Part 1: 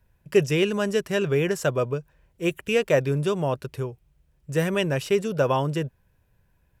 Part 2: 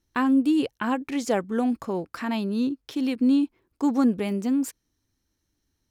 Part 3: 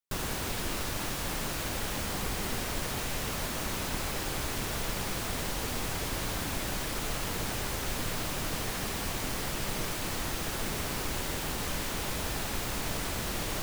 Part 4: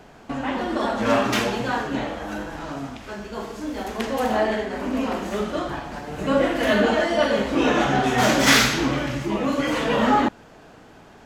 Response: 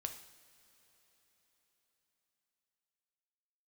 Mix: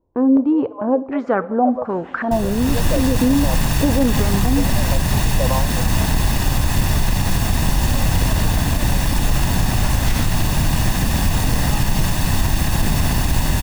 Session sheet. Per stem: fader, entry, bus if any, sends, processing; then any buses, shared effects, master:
+1.5 dB, 0.00 s, no send, de-esser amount 90%; elliptic band-pass 510–1100 Hz, stop band 40 dB
+1.5 dB, 0.00 s, send -5 dB, stepped low-pass 2.7 Hz 480–1600 Hz
+1.0 dB, 2.20 s, no send, minimum comb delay 1.1 ms; low shelf 340 Hz +12 dB; AGC gain up to 11.5 dB
-14.5 dB, 1.60 s, no send, dry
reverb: on, pre-delay 3 ms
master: limiter -7 dBFS, peak gain reduction 8 dB

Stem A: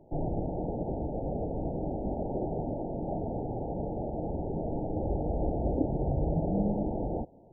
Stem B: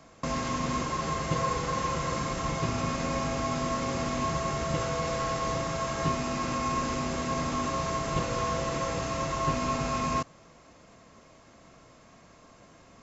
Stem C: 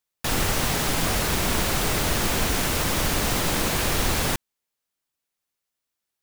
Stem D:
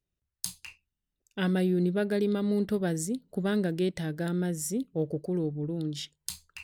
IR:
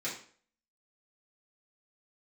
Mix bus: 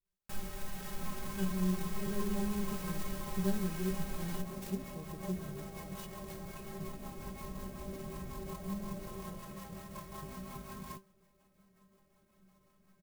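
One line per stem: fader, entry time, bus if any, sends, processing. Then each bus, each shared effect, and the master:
-8.0 dB, 2.15 s, bus A, no send, dry
-3.0 dB, 0.75 s, bus A, no send, rotary speaker horn 5.5 Hz
+2.0 dB, 0.05 s, no bus, no send, limiter -17.5 dBFS, peak gain reduction 7 dB; auto duck -9 dB, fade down 0.40 s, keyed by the fourth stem
-0.5 dB, 0.00 s, bus A, no send, de-esser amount 60%; step gate "x.x..xxxx" 104 bpm -12 dB
bus A: 0.0 dB, limiter -22.5 dBFS, peak gain reduction 6 dB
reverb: off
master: low shelf 170 Hz +10.5 dB; metallic resonator 190 Hz, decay 0.22 s, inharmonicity 0.008; clock jitter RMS 0.063 ms

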